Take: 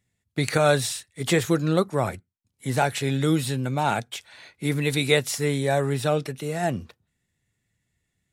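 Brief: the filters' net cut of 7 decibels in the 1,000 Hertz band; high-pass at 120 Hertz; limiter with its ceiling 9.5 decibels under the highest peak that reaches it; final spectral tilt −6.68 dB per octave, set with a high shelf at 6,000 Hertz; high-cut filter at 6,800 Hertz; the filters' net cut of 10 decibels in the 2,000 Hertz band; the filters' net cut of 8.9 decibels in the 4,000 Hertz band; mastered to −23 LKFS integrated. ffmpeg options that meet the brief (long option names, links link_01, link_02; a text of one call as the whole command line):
ffmpeg -i in.wav -af "highpass=120,lowpass=6800,equalizer=frequency=1000:width_type=o:gain=-8.5,equalizer=frequency=2000:width_type=o:gain=-8,equalizer=frequency=4000:width_type=o:gain=-6,highshelf=frequency=6000:gain=-4,volume=8dB,alimiter=limit=-12dB:level=0:latency=1" out.wav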